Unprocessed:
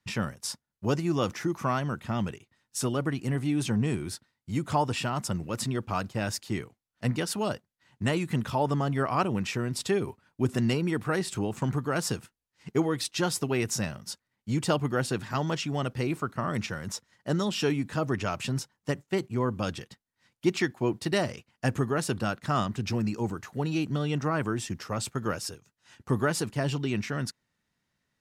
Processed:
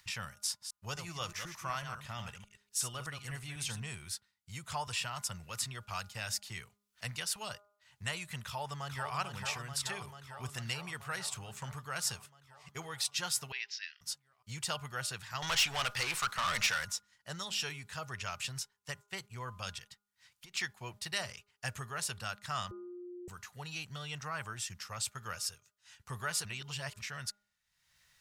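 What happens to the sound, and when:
0.46–3.8 reverse delay 0.124 s, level -7.5 dB
4.87–7.36 three-band squash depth 40%
8.45–9.14 echo throw 0.44 s, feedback 75%, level -5.5 dB
13.52–14.01 elliptic band-pass 1700–5000 Hz
15.42–16.85 overdrive pedal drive 24 dB, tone 5900 Hz, clips at -16 dBFS
19.78–20.54 compressor, threshold -37 dBFS
22.71–23.28 bleep 355 Hz -17.5 dBFS
26.45–27.01 reverse
whole clip: passive tone stack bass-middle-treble 10-0-10; de-hum 204.5 Hz, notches 7; upward compressor, threshold -53 dBFS

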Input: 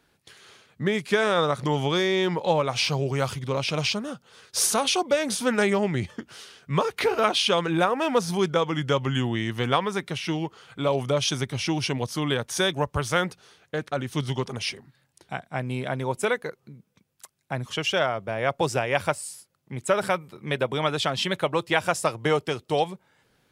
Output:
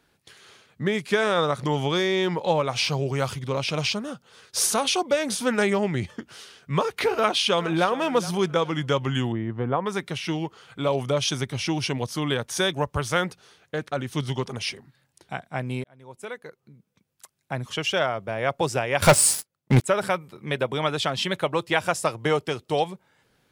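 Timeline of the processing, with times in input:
7.16–7.88 echo throw 0.42 s, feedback 35%, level -16.5 dB
9.32–9.86 LPF 1000 Hz
15.84–17.54 fade in
19.02–19.84 sample leveller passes 5

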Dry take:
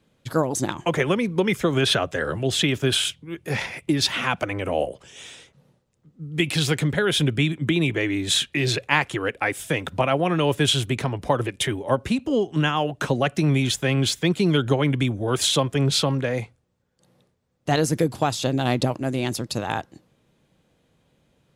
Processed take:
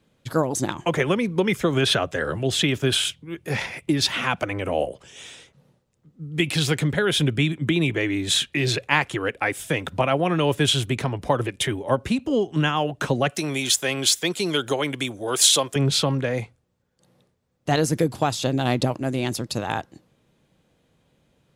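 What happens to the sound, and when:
13.3–15.76 tone controls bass -14 dB, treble +9 dB

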